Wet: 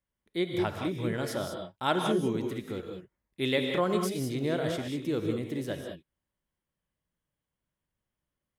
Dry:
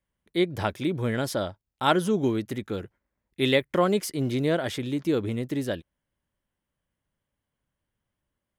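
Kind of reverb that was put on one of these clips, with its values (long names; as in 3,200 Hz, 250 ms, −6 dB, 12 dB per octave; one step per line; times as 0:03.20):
reverb whose tail is shaped and stops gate 220 ms rising, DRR 3 dB
level −6 dB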